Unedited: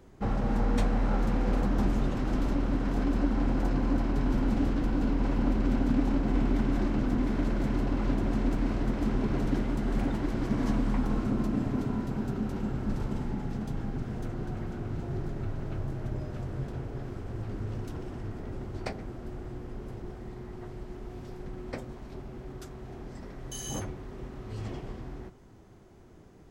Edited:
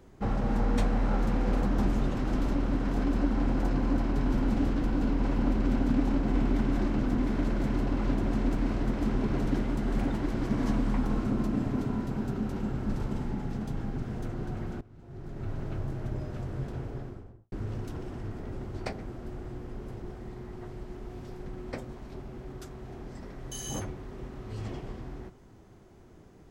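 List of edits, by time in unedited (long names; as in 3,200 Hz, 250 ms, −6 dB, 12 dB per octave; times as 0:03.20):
0:14.81–0:15.53: fade in quadratic, from −20 dB
0:16.86–0:17.52: fade out and dull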